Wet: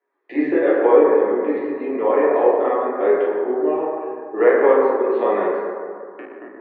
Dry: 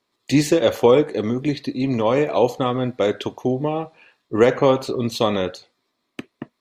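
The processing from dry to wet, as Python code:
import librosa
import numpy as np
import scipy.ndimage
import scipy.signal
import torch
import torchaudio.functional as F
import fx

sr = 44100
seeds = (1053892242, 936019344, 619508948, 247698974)

y = fx.cabinet(x, sr, low_hz=310.0, low_slope=24, high_hz=2100.0, hz=(390.0, 780.0, 1700.0), db=(7, 3, 8))
y = fx.rev_fdn(y, sr, rt60_s=2.3, lf_ratio=0.95, hf_ratio=0.35, size_ms=98.0, drr_db=-8.5)
y = y * librosa.db_to_amplitude(-9.0)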